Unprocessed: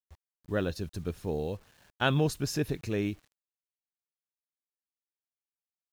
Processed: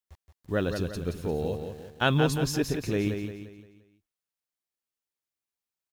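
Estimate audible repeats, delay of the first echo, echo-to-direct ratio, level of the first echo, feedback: 4, 174 ms, -5.5 dB, -6.5 dB, 42%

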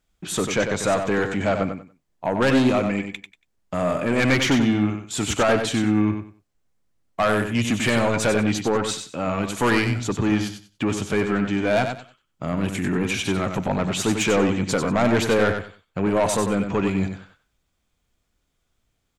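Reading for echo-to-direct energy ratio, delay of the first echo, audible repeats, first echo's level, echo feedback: -7.0 dB, 94 ms, 3, -7.0 dB, 22%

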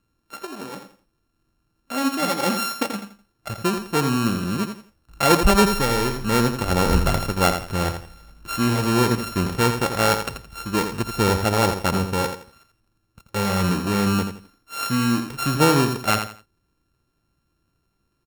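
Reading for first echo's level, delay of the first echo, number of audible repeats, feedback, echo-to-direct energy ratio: -8.0 dB, 84 ms, 3, 27%, -7.5 dB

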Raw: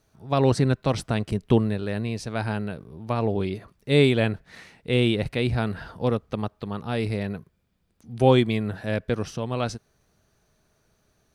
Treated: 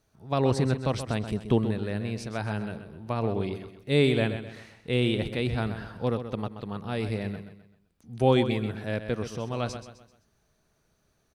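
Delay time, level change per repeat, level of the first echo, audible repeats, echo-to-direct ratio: 129 ms, -8.0 dB, -10.0 dB, 4, -9.5 dB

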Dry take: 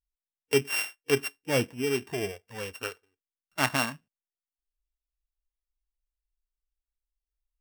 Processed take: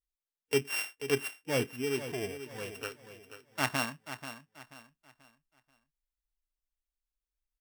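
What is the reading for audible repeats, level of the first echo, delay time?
3, -11.5 dB, 485 ms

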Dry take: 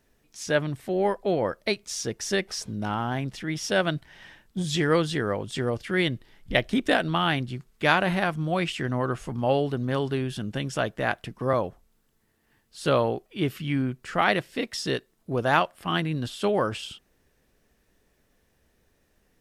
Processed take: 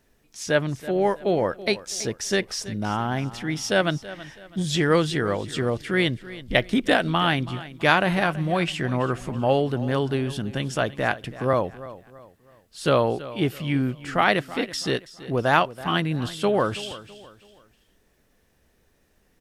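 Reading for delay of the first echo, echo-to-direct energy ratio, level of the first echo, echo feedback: 328 ms, -16.0 dB, -16.5 dB, 37%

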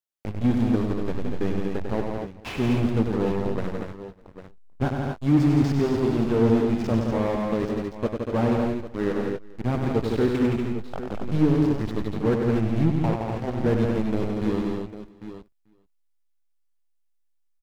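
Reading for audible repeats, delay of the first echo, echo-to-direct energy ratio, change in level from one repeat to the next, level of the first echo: 8, 97 ms, 0.0 dB, no regular repeats, -5.5 dB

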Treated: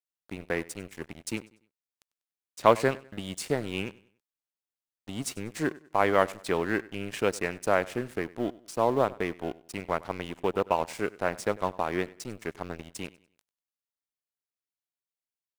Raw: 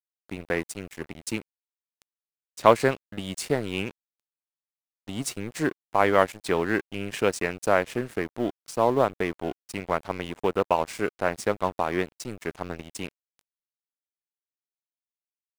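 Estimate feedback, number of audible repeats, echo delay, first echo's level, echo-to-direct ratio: 35%, 2, 97 ms, -21.0 dB, -20.5 dB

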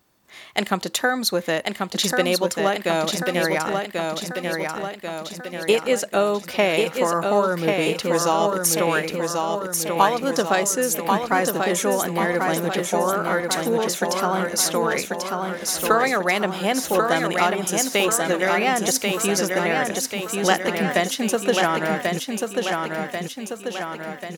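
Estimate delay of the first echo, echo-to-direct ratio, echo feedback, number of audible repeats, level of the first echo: 1089 ms, -2.5 dB, 56%, 7, -4.0 dB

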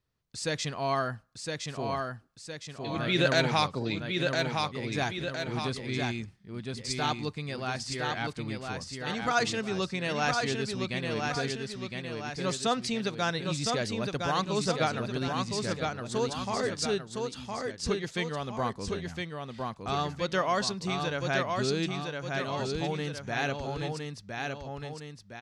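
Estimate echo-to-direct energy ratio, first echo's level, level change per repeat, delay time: -3.0 dB, -4.0 dB, -5.5 dB, 1012 ms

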